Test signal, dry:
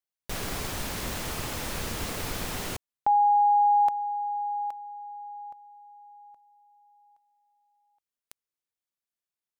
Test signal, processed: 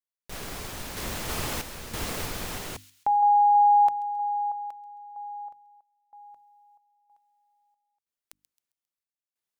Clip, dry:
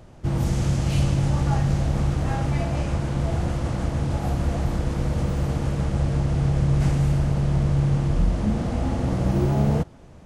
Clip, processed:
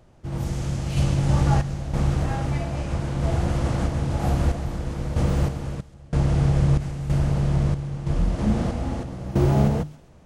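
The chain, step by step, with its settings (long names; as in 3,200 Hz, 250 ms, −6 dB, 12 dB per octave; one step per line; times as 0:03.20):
mains-hum notches 50/100/150/200/250/300 Hz
sample-and-hold tremolo 3.1 Hz, depth 95%
delay with a high-pass on its return 134 ms, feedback 38%, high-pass 3,100 Hz, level −14 dB
level +3 dB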